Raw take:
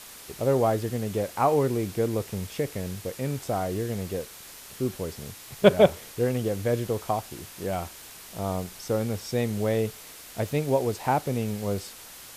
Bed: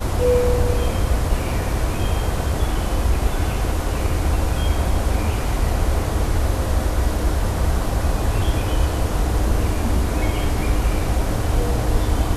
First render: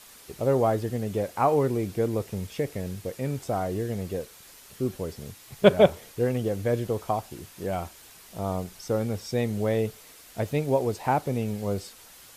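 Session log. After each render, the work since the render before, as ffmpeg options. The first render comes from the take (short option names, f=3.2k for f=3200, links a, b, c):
-af "afftdn=nr=6:nf=-45"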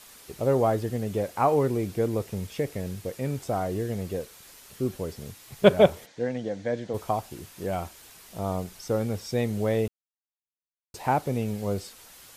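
-filter_complex "[0:a]asplit=3[a][b][c];[a]afade=t=out:st=6.05:d=0.02[d];[b]highpass=200,equalizer=f=390:t=q:w=4:g=-10,equalizer=f=1.2k:t=q:w=4:g=-10,equalizer=f=1.8k:t=q:w=4:g=3,equalizer=f=2.7k:t=q:w=4:g=-7,equalizer=f=5k:t=q:w=4:g=-4,lowpass=f=6.1k:w=0.5412,lowpass=f=6.1k:w=1.3066,afade=t=in:st=6.05:d=0.02,afade=t=out:st=6.93:d=0.02[e];[c]afade=t=in:st=6.93:d=0.02[f];[d][e][f]amix=inputs=3:normalize=0,asplit=3[g][h][i];[g]atrim=end=9.88,asetpts=PTS-STARTPTS,afade=t=out:st=9.876:d=0.004:c=hsin[j];[h]atrim=start=9.88:end=10.94,asetpts=PTS-STARTPTS,volume=0[k];[i]atrim=start=10.94,asetpts=PTS-STARTPTS,afade=t=in:d=0.004:c=hsin[l];[j][k][l]concat=n=3:v=0:a=1"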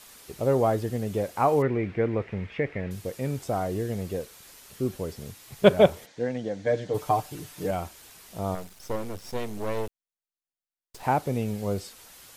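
-filter_complex "[0:a]asettb=1/sr,asplit=3[a][b][c];[a]atrim=end=1.624[d];[b]atrim=start=1.62:end=2.91,asetpts=PTS-STARTPTS,afade=t=in:d=0.004:c=qsin,afade=t=out:st=1.286:d=0.004:c=qsin,lowpass=f=2.1k:t=q:w=3[e];[c]atrim=start=2.906[f];[d][e]acrossfade=d=0.004:c1=hsin:c2=qsin[g];[g][f]acrossfade=d=0.004:c1=qsin:c2=hsin,asettb=1/sr,asplit=3[h][i][j];[h]atrim=end=6.664[k];[i]atrim=start=6.66:end=7.71,asetpts=PTS-STARTPTS,afade=t=in:d=0.004:c=qsin,afade=t=out:st=1.046:d=0.004:c=qsin,aecho=1:1:6.7:0.87,atrim=end_sample=46305[l];[j]atrim=start=7.706[m];[k][l]acrossfade=d=0.004:c1=hsin:c2=qsin[n];[n][m]acrossfade=d=0.004:c1=qsin:c2=hsin,asettb=1/sr,asplit=3[o][p][q];[o]atrim=end=8.554[r];[p]atrim=start=8.55:end=11.03,asetpts=PTS-STARTPTS,afade=t=in:d=0.004:c=qsin,afade=t=out:st=2.476:d=0.004:c=qsin,aeval=exprs='max(val(0),0)':c=same[s];[q]atrim=start=11.026[t];[r][s]acrossfade=d=0.004:c1=hsin:c2=qsin[u];[u][t]acrossfade=d=0.004:c1=qsin:c2=hsin"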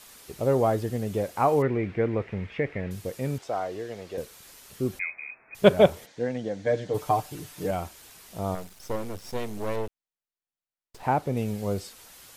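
-filter_complex "[0:a]asettb=1/sr,asplit=3[a][b][c];[a]atrim=end=3.384[d];[b]atrim=start=3.38:end=4.18,asetpts=PTS-STARTPTS,afade=t=in:d=0.004:c=qsin,afade=t=out:st=0.796:d=0.004:c=qsin,acrossover=split=380 6400:gain=0.178 1 0.178[e][f][g];[e][f][g]amix=inputs=3:normalize=0[h];[c]atrim=start=4.176[i];[d][h]acrossfade=d=0.004:c1=hsin:c2=qsin[j];[j][i]acrossfade=d=0.004:c1=qsin:c2=hsin,asettb=1/sr,asplit=3[k][l][m];[k]atrim=end=4.994[n];[l]atrim=start=4.99:end=5.55,asetpts=PTS-STARTPTS,afade=t=in:d=0.004:c=qsin,afade=t=out:st=0.556:d=0.004:c=qsin,lowpass=f=2.2k:t=q:w=0.5098,lowpass=f=2.2k:t=q:w=0.6013,lowpass=f=2.2k:t=q:w=0.9,lowpass=f=2.2k:t=q:w=2.563,afreqshift=-2600[o];[m]atrim=start=5.546[p];[n][o]acrossfade=d=0.004:c1=hsin:c2=qsin[q];[q][p]acrossfade=d=0.004:c1=qsin:c2=hsin,asettb=1/sr,asplit=3[r][s][t];[r]atrim=end=9.764[u];[s]atrim=start=9.76:end=11.37,asetpts=PTS-STARTPTS,afade=t=in:d=0.004:c=qsin,afade=t=out:st=1.606:d=0.004:c=qsin,highshelf=f=3.9k:g=-7.5[v];[t]atrim=start=11.366[w];[u][v]acrossfade=d=0.004:c1=hsin:c2=qsin[x];[x][w]acrossfade=d=0.004:c1=qsin:c2=hsin"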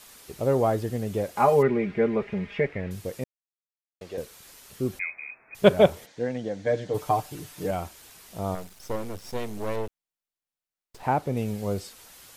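-filter_complex "[0:a]asettb=1/sr,asplit=3[a][b][c];[a]atrim=end=1.364[d];[b]atrim=start=1.36:end=2.67,asetpts=PTS-STARTPTS,afade=t=in:d=0.004:c=qsin,afade=t=out:st=1.306:d=0.004:c=qsin,aecho=1:1:4.9:0.87,atrim=end_sample=57771[e];[c]atrim=start=2.666[f];[d][e]acrossfade=d=0.004:c1=hsin:c2=qsin[g];[g][f]acrossfade=d=0.004:c1=qsin:c2=hsin,asplit=3[h][i][j];[h]atrim=end=3.24,asetpts=PTS-STARTPTS,afade=t=out:st=3.236:d=0.004:c=hsin[k];[i]atrim=start=3.24:end=4.01,asetpts=PTS-STARTPTS,volume=0[l];[j]atrim=start=4.01,asetpts=PTS-STARTPTS,afade=t=in:d=0.004:c=hsin[m];[k][l][m]concat=n=3:v=0:a=1"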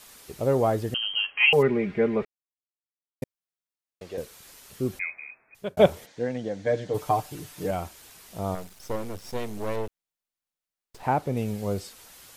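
-filter_complex "[0:a]asettb=1/sr,asplit=3[a][b][c];[a]atrim=end=0.944[d];[b]atrim=start=0.94:end=1.53,asetpts=PTS-STARTPTS,afade=t=in:d=0.004:c=qsin,afade=t=out:st=0.586:d=0.004:c=qsin,lowpass=f=2.8k:t=q:w=0.5098,lowpass=f=2.8k:t=q:w=0.6013,lowpass=f=2.8k:t=q:w=0.9,lowpass=f=2.8k:t=q:w=2.563,afreqshift=-3300[e];[c]atrim=start=1.526[f];[d][e]acrossfade=d=0.004:c1=hsin:c2=qsin[g];[g][f]acrossfade=d=0.004:c1=qsin:c2=hsin,asplit=4[h][i][j][k];[h]atrim=end=2.25,asetpts=PTS-STARTPTS,afade=t=out:st=2.246:d=0.004:c=hsin[l];[i]atrim=start=2.25:end=3.22,asetpts=PTS-STARTPTS,volume=0[m];[j]atrim=start=3.22:end=5.77,asetpts=PTS-STARTPTS,afade=t=in:d=0.004:c=hsin,afade=t=out:st=1.86:d=0.69[n];[k]atrim=start=5.77,asetpts=PTS-STARTPTS,afade=t=in:d=0.004:c=hsin[o];[l][m][n][o]concat=n=4:v=0:a=1"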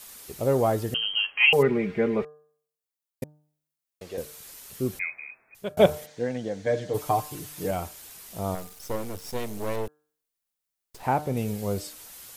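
-af "highshelf=f=7.6k:g=8.5,bandreject=f=150.7:t=h:w=4,bandreject=f=301.4:t=h:w=4,bandreject=f=452.1:t=h:w=4,bandreject=f=602.8:t=h:w=4,bandreject=f=753.5:t=h:w=4,bandreject=f=904.2:t=h:w=4,bandreject=f=1.0549k:t=h:w=4,bandreject=f=1.2056k:t=h:w=4,bandreject=f=1.3563k:t=h:w=4,bandreject=f=1.507k:t=h:w=4,bandreject=f=1.6577k:t=h:w=4"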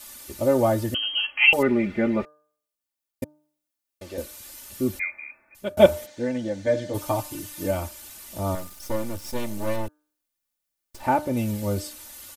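-af "equalizer=f=110:w=1:g=5.5,aecho=1:1:3.4:0.88"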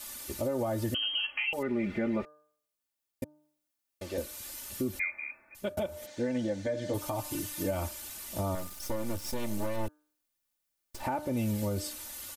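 -af "acompressor=threshold=-23dB:ratio=6,alimiter=limit=-22.5dB:level=0:latency=1:release=221"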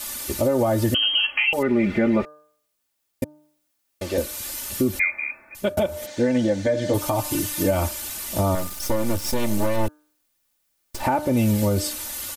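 -af "volume=11dB"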